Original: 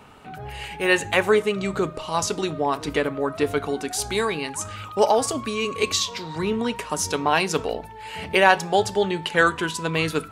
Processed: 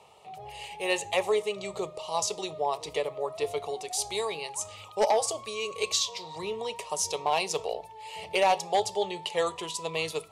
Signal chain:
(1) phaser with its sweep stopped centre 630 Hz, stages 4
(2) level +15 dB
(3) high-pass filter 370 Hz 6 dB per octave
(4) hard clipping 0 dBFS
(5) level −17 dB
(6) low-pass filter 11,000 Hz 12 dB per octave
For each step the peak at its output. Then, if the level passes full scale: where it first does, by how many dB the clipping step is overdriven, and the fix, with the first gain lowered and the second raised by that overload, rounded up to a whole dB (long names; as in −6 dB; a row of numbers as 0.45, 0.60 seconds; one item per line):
−6.5, +8.5, +6.5, 0.0, −17.0, −16.0 dBFS
step 2, 6.5 dB
step 2 +8 dB, step 5 −10 dB